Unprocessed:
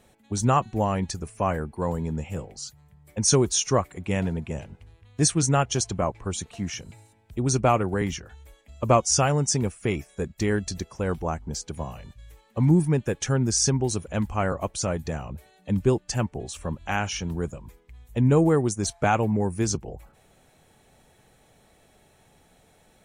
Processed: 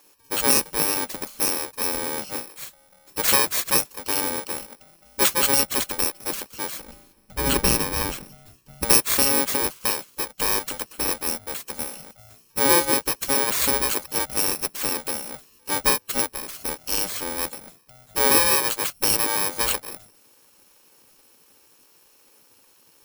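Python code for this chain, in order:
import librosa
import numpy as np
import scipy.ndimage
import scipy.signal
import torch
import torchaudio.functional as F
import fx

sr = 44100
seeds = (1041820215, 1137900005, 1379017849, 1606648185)

y = fx.bit_reversed(x, sr, seeds[0], block=64)
y = fx.spec_gate(y, sr, threshold_db=-10, keep='weak')
y = fx.bass_treble(y, sr, bass_db=11, treble_db=-3, at=(6.8, 8.85))
y = y * 10.0 ** (6.0 / 20.0)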